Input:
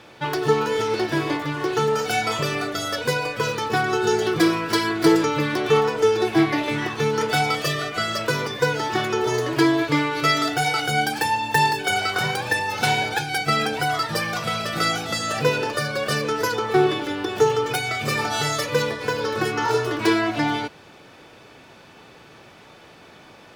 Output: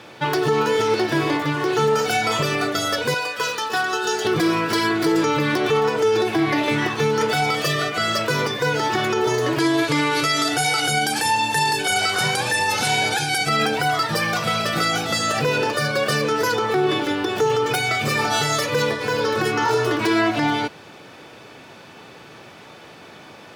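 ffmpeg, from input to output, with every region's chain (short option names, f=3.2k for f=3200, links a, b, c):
-filter_complex "[0:a]asettb=1/sr,asplit=3[a][b][c];[a]atrim=end=3.144[d];[b]atrim=start=3.14:end=4.25,asetpts=PTS-STARTPTS,afade=t=in:d=0.004:c=qsin,afade=t=out:st=1.106:d=0.004:c=qsin,highpass=f=1.1k:p=1,bandreject=f=2.2k:w=8.7[e];[c]atrim=start=4.246[f];[d][e]acrossfade=d=0.004:c1=hsin:c2=qsin[g];[g][f]acrossfade=d=0.004:c1=qsin:c2=hsin,asettb=1/sr,asplit=3[h][i][j];[h]atrim=end=9.604[k];[i]atrim=start=9.6:end=13.49,asetpts=PTS-STARTPTS,afade=t=in:d=0.004:c=qsin,afade=t=out:st=3.886:d=0.004:c=qsin,lowpass=f=11k:w=0.5412,lowpass=f=11k:w=1.3066,aemphasis=mode=production:type=50kf[l];[j]atrim=start=13.486[m];[k][l]acrossfade=d=0.004:c1=hsin:c2=qsin[n];[n][m]acrossfade=d=0.004:c1=qsin:c2=hsin,highpass=88,alimiter=limit=-15.5dB:level=0:latency=1:release=59,volume=4.5dB"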